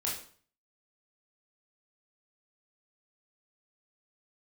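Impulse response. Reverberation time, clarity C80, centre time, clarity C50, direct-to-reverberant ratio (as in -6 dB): 0.45 s, 9.5 dB, 37 ms, 4.5 dB, -4.5 dB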